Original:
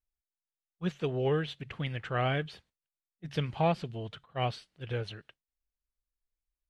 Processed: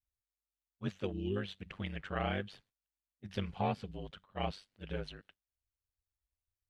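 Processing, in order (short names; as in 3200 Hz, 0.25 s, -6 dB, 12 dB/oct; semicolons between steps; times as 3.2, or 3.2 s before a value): ring modulator 49 Hz; 1.12–1.36 spectral gain 420–2400 Hz -23 dB; 3.44–3.91 notch comb 310 Hz; gain -2.5 dB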